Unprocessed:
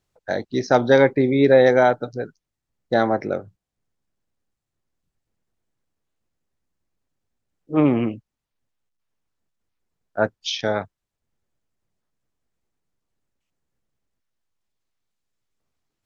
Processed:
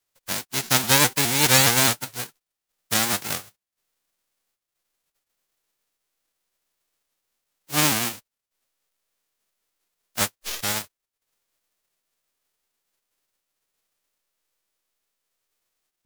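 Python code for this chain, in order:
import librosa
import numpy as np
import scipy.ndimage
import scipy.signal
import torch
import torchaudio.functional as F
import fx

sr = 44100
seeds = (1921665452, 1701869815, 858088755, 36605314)

y = fx.envelope_flatten(x, sr, power=0.1)
y = fx.vibrato_shape(y, sr, shape='saw_up', rate_hz=4.8, depth_cents=160.0)
y = y * librosa.db_to_amplitude(-3.5)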